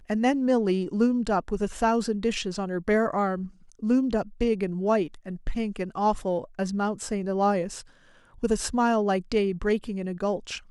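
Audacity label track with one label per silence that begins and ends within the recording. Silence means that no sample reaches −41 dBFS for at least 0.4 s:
7.820000	8.380000	silence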